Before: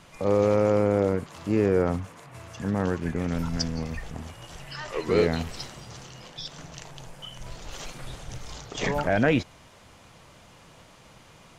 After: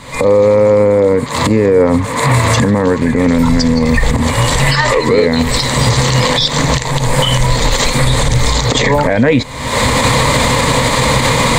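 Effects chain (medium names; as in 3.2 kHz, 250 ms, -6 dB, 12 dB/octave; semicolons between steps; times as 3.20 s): recorder AGC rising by 59 dB/s; rippled EQ curve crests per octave 1, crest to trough 10 dB; loudness maximiser +17 dB; trim -1 dB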